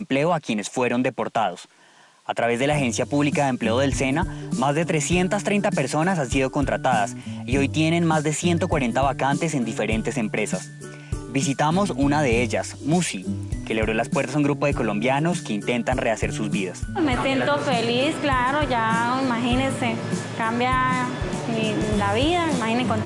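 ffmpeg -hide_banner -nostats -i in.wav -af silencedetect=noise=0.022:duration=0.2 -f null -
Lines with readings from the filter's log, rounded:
silence_start: 1.64
silence_end: 2.29 | silence_duration: 0.65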